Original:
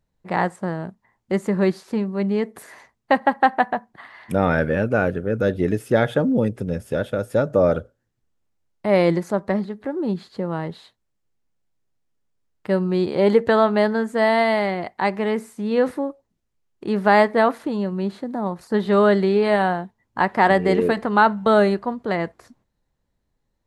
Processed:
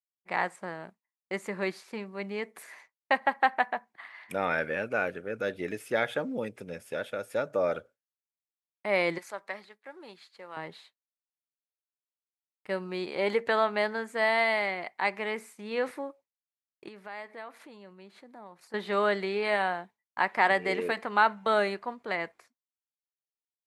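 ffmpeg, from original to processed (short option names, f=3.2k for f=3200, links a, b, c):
-filter_complex "[0:a]asettb=1/sr,asplit=3[a][b][c];[a]atrim=end=9.184[d];[b]atrim=start=9.18:end=10.57,asetpts=PTS-STARTPTS,afade=t=in:d=0.004:c=qsin,afade=t=out:st=1.386:d=0.004:c=qsin,highpass=f=1.2k:p=1[e];[c]atrim=start=10.566[f];[d][e]acrossfade=d=0.004:c1=hsin:c2=qsin[g];[g][f]acrossfade=d=0.004:c1=qsin:c2=hsin,asettb=1/sr,asplit=3[h][i][j];[h]atrim=end=16.884[k];[i]atrim=start=16.88:end=18.74,asetpts=PTS-STARTPTS,afade=t=in:d=0.004:c=qsin,afade=t=out:st=1.856:d=0.004:c=qsin,acompressor=threshold=-36dB:ratio=3:attack=3.2:release=140:knee=1:detection=peak[l];[j]atrim=start=18.736[m];[k][l]acrossfade=d=0.004:c1=hsin:c2=qsin[n];[n][m]acrossfade=d=0.004:c1=qsin:c2=hsin,highpass=f=860:p=1,agate=range=-33dB:threshold=-44dB:ratio=3:detection=peak,equalizer=f=2.3k:t=o:w=0.41:g=7.5,volume=-5dB"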